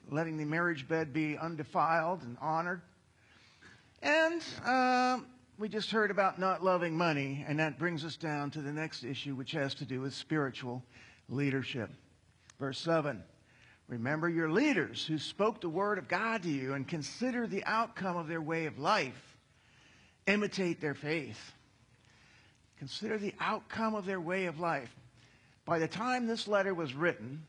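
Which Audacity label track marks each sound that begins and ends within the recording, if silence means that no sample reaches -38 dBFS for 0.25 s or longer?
4.030000	5.200000	sound
5.610000	10.780000	sound
11.310000	11.860000	sound
12.500000	13.190000	sound
13.900000	19.100000	sound
20.270000	21.400000	sound
22.820000	24.860000	sound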